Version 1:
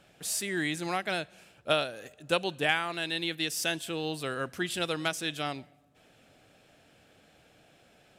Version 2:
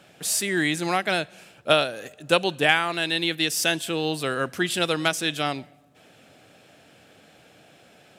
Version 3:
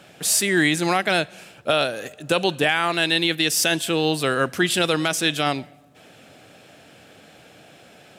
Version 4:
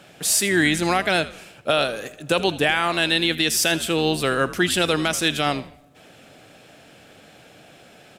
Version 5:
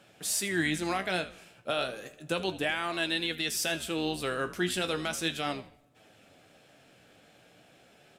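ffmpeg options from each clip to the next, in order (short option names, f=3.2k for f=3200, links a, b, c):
-af "highpass=100,volume=7.5dB"
-af "alimiter=limit=-12.5dB:level=0:latency=1:release=15,volume=5dB"
-filter_complex "[0:a]asplit=4[a][b][c][d];[b]adelay=80,afreqshift=-94,volume=-16dB[e];[c]adelay=160,afreqshift=-188,volume=-26.2dB[f];[d]adelay=240,afreqshift=-282,volume=-36.3dB[g];[a][e][f][g]amix=inputs=4:normalize=0"
-af "flanger=delay=9:depth=8.4:regen=54:speed=0.34:shape=sinusoidal,volume=-6.5dB"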